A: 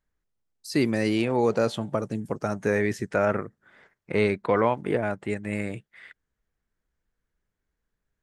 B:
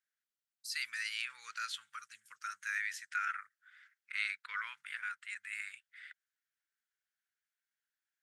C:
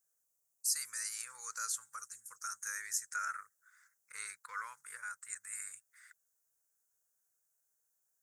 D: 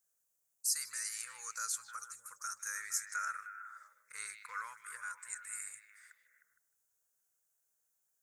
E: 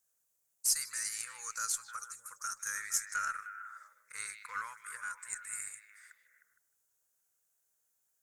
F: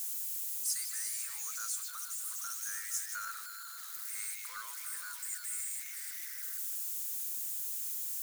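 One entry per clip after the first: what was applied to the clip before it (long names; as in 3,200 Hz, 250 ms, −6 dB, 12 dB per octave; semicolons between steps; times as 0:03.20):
elliptic high-pass filter 1,400 Hz, stop band 50 dB; level −3.5 dB
drawn EQ curve 140 Hz 0 dB, 300 Hz −9 dB, 470 Hz +4 dB, 1,100 Hz −3 dB, 3,100 Hz −28 dB, 6,600 Hz +8 dB; level +7 dB
echo through a band-pass that steps 154 ms, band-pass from 2,900 Hz, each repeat −0.7 octaves, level −6.5 dB
harmonic generator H 2 −33 dB, 6 −39 dB, 7 −32 dB, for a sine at −19 dBFS; level +4 dB
spike at every zero crossing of −28 dBFS; level −7 dB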